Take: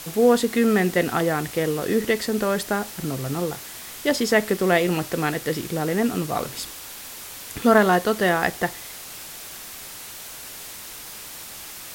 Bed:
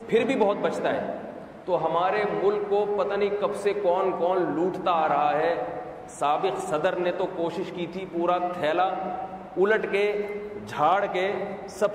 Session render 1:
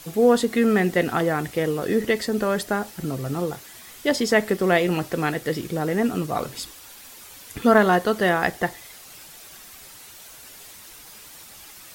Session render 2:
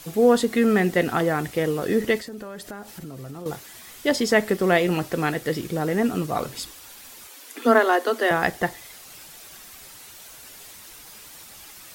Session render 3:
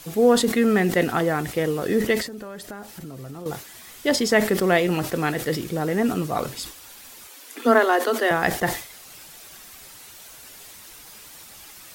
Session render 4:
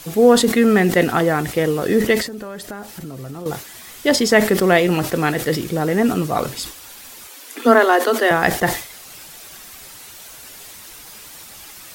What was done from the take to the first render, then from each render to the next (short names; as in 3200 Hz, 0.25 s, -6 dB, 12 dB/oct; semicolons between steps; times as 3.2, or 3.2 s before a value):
denoiser 8 dB, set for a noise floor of -39 dBFS
2.18–3.46 compressor 4:1, threshold -35 dBFS; 7.27–8.31 Chebyshev high-pass 230 Hz, order 10
sustainer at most 110 dB/s
gain +5 dB; limiter -1 dBFS, peak gain reduction 2 dB